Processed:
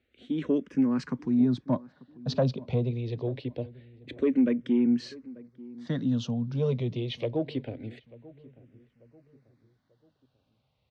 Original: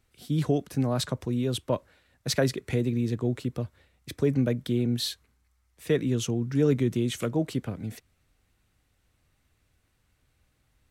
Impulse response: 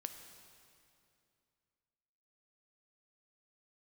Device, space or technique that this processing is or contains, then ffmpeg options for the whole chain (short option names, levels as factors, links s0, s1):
barber-pole phaser into a guitar amplifier: -filter_complex "[0:a]asettb=1/sr,asplit=3[s0][s1][s2];[s0]atrim=end=1.404[s3];[s1]atrim=start=1.4:end=2.91,asetpts=PTS-STARTPTS,afade=t=in:d=0.004:c=qsin,afade=t=out:st=1.506:d=0.004:c=qsin,tiltshelf=f=970:g=4[s4];[s2]atrim=start=2.906[s5];[s3][s4]acrossfade=d=0.004:c1=hsin:c2=qsin[s6];[s6][s5]acrossfade=d=0.004:c1=qsin:c2=hsin,asplit=2[s7][s8];[s8]afreqshift=-0.25[s9];[s7][s9]amix=inputs=2:normalize=1,asoftclip=type=tanh:threshold=0.141,highpass=76,equalizer=f=88:t=q:w=4:g=-8,equalizer=f=250:t=q:w=4:g=7,equalizer=f=560:t=q:w=4:g=4,equalizer=f=1300:t=q:w=4:g=-4,lowpass=f=4500:w=0.5412,lowpass=f=4500:w=1.3066,asplit=2[s10][s11];[s11]adelay=890,lowpass=f=1100:p=1,volume=0.1,asplit=2[s12][s13];[s13]adelay=890,lowpass=f=1100:p=1,volume=0.42,asplit=2[s14][s15];[s15]adelay=890,lowpass=f=1100:p=1,volume=0.42[s16];[s10][s12][s14][s16]amix=inputs=4:normalize=0"